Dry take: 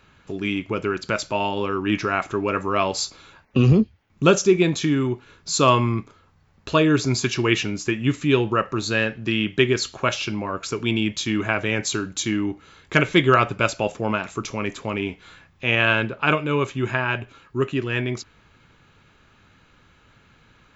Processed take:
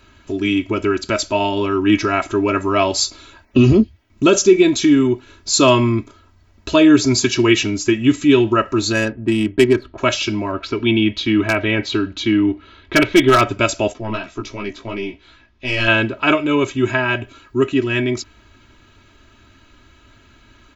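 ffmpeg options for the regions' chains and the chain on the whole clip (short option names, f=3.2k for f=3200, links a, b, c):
-filter_complex "[0:a]asettb=1/sr,asplit=3[a][b][c];[a]atrim=end=8.924[d];[b]atrim=start=8.92:end=9.98,asetpts=PTS-STARTPTS,afade=t=in:d=0.004:c=qsin,afade=t=out:st=1.056:d=0.004:c=qsin,lowpass=2.7k,adynamicsmooth=sensitivity=1:basefreq=1.1k[e];[c]atrim=start=9.976[f];[d][e]acrossfade=d=0.004:c1=hsin:c2=qsin[g];[g][f]acrossfade=d=0.004:c1=qsin:c2=hsin,asettb=1/sr,asplit=3[h][i][j];[h]atrim=end=10.524[k];[i]atrim=start=10.52:end=13.41,asetpts=PTS-STARTPTS,afade=t=in:d=0.004:c=qsin,afade=t=out:st=2.886:d=0.004:c=qsin,lowpass=f=4k:w=0.5412,lowpass=f=4k:w=1.3066,aeval=exprs='0.376*(abs(mod(val(0)/0.376+3,4)-2)-1)':c=same[l];[j]atrim=start=13.406[m];[k][l]acrossfade=d=0.004:c1=hsin:c2=qsin[n];[n][m]acrossfade=d=0.004:c1=qsin:c2=hsin,asettb=1/sr,asplit=3[o][p][q];[o]atrim=end=13.934[r];[p]atrim=start=13.93:end=15.88,asetpts=PTS-STARTPTS,afade=t=in:d=0.004:c=qsin,afade=t=out:st=1.946:d=0.004:c=qsin,aeval=exprs='(tanh(3.55*val(0)+0.6)-tanh(0.6))/3.55':c=same,lowpass=f=5.6k:w=0.5412,lowpass=f=5.6k:w=1.3066,flanger=delay=15:depth=2.6:speed=2.8[s];[q]atrim=start=15.876[t];[r][s]acrossfade=d=0.004:c1=hsin:c2=qsin[u];[u][t]acrossfade=d=0.004:c1=qsin:c2=hsin,equalizer=f=1.2k:t=o:w=2.5:g=-5,aecho=1:1:3.1:0.79,alimiter=level_in=7dB:limit=-1dB:release=50:level=0:latency=1,volume=-1dB"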